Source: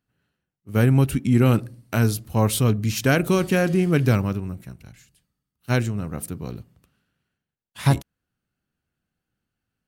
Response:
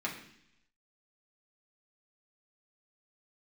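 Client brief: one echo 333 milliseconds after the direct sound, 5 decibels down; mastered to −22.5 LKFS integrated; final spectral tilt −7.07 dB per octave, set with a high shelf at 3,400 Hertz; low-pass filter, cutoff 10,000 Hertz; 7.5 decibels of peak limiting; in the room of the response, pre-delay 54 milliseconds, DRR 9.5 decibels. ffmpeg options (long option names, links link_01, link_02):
-filter_complex "[0:a]lowpass=10000,highshelf=frequency=3400:gain=-6,alimiter=limit=-15.5dB:level=0:latency=1,aecho=1:1:333:0.562,asplit=2[link_01][link_02];[1:a]atrim=start_sample=2205,adelay=54[link_03];[link_02][link_03]afir=irnorm=-1:irlink=0,volume=-14dB[link_04];[link_01][link_04]amix=inputs=2:normalize=0,volume=2.5dB"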